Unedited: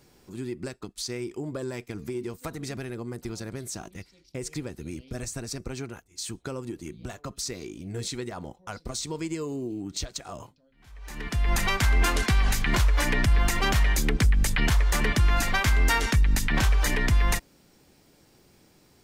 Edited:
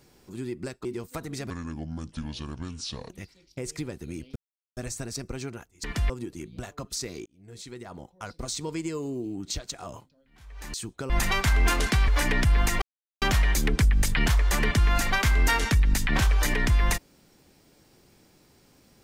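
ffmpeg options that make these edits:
ffmpeg -i in.wav -filter_complex "[0:a]asplit=12[link_01][link_02][link_03][link_04][link_05][link_06][link_07][link_08][link_09][link_10][link_11][link_12];[link_01]atrim=end=0.852[link_13];[link_02]atrim=start=2.148:end=2.804[link_14];[link_03]atrim=start=2.8:end=3.87,asetpts=PTS-STARTPTS,asetrate=29547,aresample=44100,atrim=end_sample=70428,asetpts=PTS-STARTPTS[link_15];[link_04]atrim=start=3.866:end=5.13,asetpts=PTS-STARTPTS,afade=type=out:start_time=1.26:duration=0.004:curve=hsin,apad=pad_dur=0.41[link_16];[link_05]atrim=start=5.13:end=6.202,asetpts=PTS-STARTPTS,afade=type=in:duration=0.004:curve=hsin[link_17];[link_06]atrim=start=11.198:end=11.462[link_18];[link_07]atrim=start=6.558:end=7.72,asetpts=PTS-STARTPTS,afade=type=out:start_time=1.158:duration=0.004:curve=hsin[link_19];[link_08]atrim=start=7.72:end=11.202,asetpts=PTS-STARTPTS,afade=type=in:duration=1.11[link_20];[link_09]atrim=start=6.198:end=6.562[link_21];[link_10]atrim=start=11.458:end=12.442[link_22];[link_11]atrim=start=12.888:end=13.63,asetpts=PTS-STARTPTS,afade=type=out:start_time=0.738:duration=0.004:curve=hsin,apad=pad_dur=0.4[link_23];[link_12]atrim=start=13.63,asetpts=PTS-STARTPTS,afade=type=in:duration=0.004:curve=hsin[link_24];[link_13][link_14]acrossfade=duration=0.004:curve1=hsin:curve2=hsin[link_25];[link_25][link_15]acrossfade=duration=0.004:curve1=hsin:curve2=hsin[link_26];[link_16][link_17]concat=n=2:v=0:a=1[link_27];[link_26][link_27]acrossfade=duration=0.004:curve1=hsin:curve2=hsin[link_28];[link_28][link_18]acrossfade=duration=0.004:curve1=hsin:curve2=hsin[link_29];[link_19][link_20]concat=n=2:v=0:a=1[link_30];[link_29][link_30]acrossfade=duration=0.004:curve1=hsin:curve2=hsin[link_31];[link_31][link_21]acrossfade=duration=0.004:curve1=hsin:curve2=hsin[link_32];[link_32][link_22]acrossfade=duration=0.004:curve1=hsin:curve2=hsin[link_33];[link_23][link_24]concat=n=2:v=0:a=1[link_34];[link_33][link_34]acrossfade=duration=0.004:curve1=hsin:curve2=hsin" out.wav

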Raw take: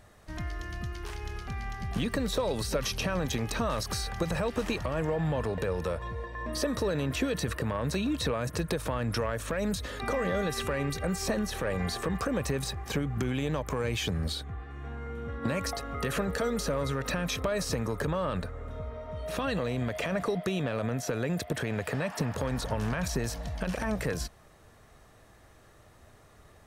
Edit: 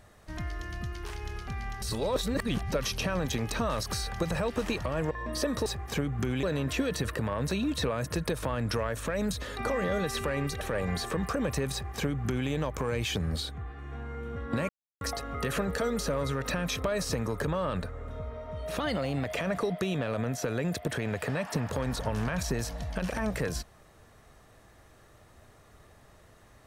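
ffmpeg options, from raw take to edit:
ffmpeg -i in.wav -filter_complex "[0:a]asplit=10[link_01][link_02][link_03][link_04][link_05][link_06][link_07][link_08][link_09][link_10];[link_01]atrim=end=1.822[link_11];[link_02]atrim=start=1.818:end=2.722,asetpts=PTS-STARTPTS,areverse[link_12];[link_03]atrim=start=2.718:end=5.112[link_13];[link_04]atrim=start=6.308:end=6.862[link_14];[link_05]atrim=start=12.638:end=13.412[link_15];[link_06]atrim=start=6.858:end=11.042[link_16];[link_07]atrim=start=11.528:end=15.61,asetpts=PTS-STARTPTS,afade=type=out:start_time=4.078:duration=0.004:curve=hsin,apad=pad_dur=0.32[link_17];[link_08]atrim=start=15.61:end=19.404,asetpts=PTS-STARTPTS,afade=type=in:duration=0.004:curve=hsin[link_18];[link_09]atrim=start=19.4:end=19.91,asetpts=PTS-STARTPTS,asetrate=48951,aresample=44100,atrim=end_sample=20262,asetpts=PTS-STARTPTS[link_19];[link_10]atrim=start=19.906[link_20];[link_11][link_12]acrossfade=duration=0.004:curve1=hsin:curve2=hsin[link_21];[link_21][link_13]acrossfade=duration=0.004:curve1=hsin:curve2=hsin[link_22];[link_22][link_14]acrossfade=duration=0.004:curve1=hsin:curve2=hsin[link_23];[link_23][link_15]acrossfade=duration=0.004:curve1=hsin:curve2=hsin[link_24];[link_24][link_16]acrossfade=duration=0.004:curve1=hsin:curve2=hsin[link_25];[link_17][link_18]concat=n=2:v=0:a=1[link_26];[link_25][link_26]acrossfade=duration=0.004:curve1=hsin:curve2=hsin[link_27];[link_27][link_19]acrossfade=duration=0.004:curve1=hsin:curve2=hsin[link_28];[link_28][link_20]acrossfade=duration=0.004:curve1=hsin:curve2=hsin" out.wav

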